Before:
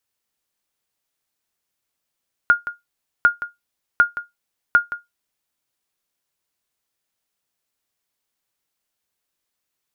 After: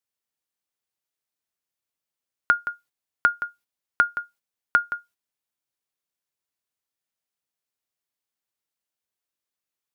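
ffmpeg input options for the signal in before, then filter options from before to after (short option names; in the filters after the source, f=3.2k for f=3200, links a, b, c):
-f lavfi -i "aevalsrc='0.596*(sin(2*PI*1420*mod(t,0.75))*exp(-6.91*mod(t,0.75)/0.17)+0.2*sin(2*PI*1420*max(mod(t,0.75)-0.17,0))*exp(-6.91*max(mod(t,0.75)-0.17,0)/0.17))':d=3:s=44100"
-af "highpass=f=48:p=1,agate=range=-9dB:threshold=-52dB:ratio=16:detection=peak,acompressor=threshold=-15dB:ratio=6"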